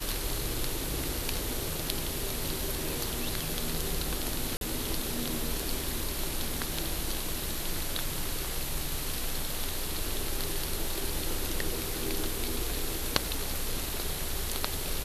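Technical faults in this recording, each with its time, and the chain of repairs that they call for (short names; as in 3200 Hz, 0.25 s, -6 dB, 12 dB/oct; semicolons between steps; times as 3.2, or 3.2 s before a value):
4.57–4.61 gap 42 ms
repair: interpolate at 4.57, 42 ms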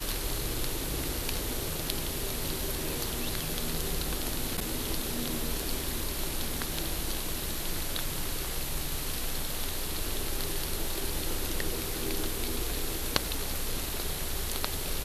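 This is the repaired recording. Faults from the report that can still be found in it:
none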